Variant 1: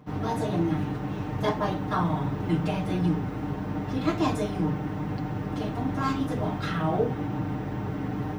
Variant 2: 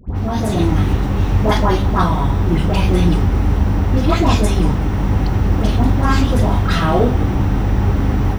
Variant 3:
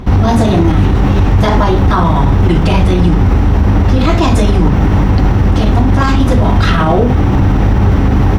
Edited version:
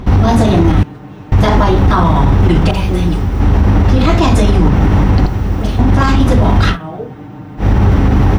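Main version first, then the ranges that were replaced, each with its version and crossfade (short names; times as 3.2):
3
0.83–1.32 from 1
2.71–3.4 from 2
5.26–5.79 from 2
6.73–7.62 from 1, crossfade 0.10 s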